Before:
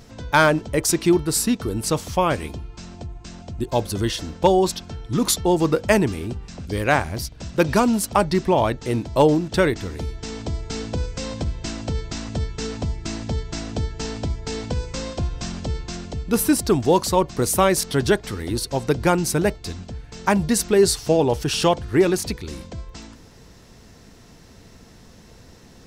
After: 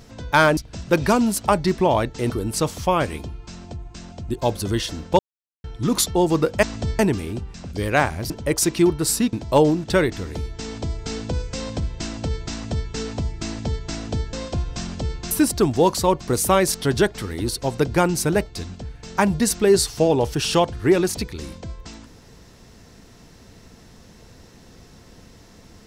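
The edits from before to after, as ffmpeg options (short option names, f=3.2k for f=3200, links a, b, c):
-filter_complex "[0:a]asplit=11[a][b][c][d][e][f][g][h][i][j][k];[a]atrim=end=0.572[l];[b]atrim=start=7.238:end=8.972[m];[c]atrim=start=1.598:end=4.49,asetpts=PTS-STARTPTS,afade=t=out:st=2.888:d=0.004:c=hsin[n];[d]atrim=start=4.49:end=4.94,asetpts=PTS-STARTPTS,volume=0[o];[e]atrim=start=4.94:end=5.932,asetpts=PTS-STARTPTS,afade=t=in:d=0.004:c=hsin[p];[f]atrim=start=12.158:end=12.522[q];[g]atrim=start=5.928:end=7.242[r];[h]atrim=start=0.568:end=1.602[s];[i]atrim=start=8.968:end=13.972[t];[j]atrim=start=14.978:end=15.962[u];[k]atrim=start=16.398[v];[l][m]acrossfade=d=0.004:c1=hsin:c2=hsin[w];[n][o][p]concat=n=3:v=0:a=1[x];[w][x]acrossfade=d=0.004:c1=hsin:c2=hsin[y];[y][q]acrossfade=d=0.004:c1=hsin:c2=hsin[z];[z][r]acrossfade=d=0.004:c1=hsin:c2=hsin[aa];[aa][s]acrossfade=d=0.004:c1=hsin:c2=hsin[ab];[ab][t]acrossfade=d=0.004:c1=hsin:c2=hsin[ac];[ac][u]acrossfade=d=0.004:c1=hsin:c2=hsin[ad];[ad][v]acrossfade=d=0.004:c1=hsin:c2=hsin"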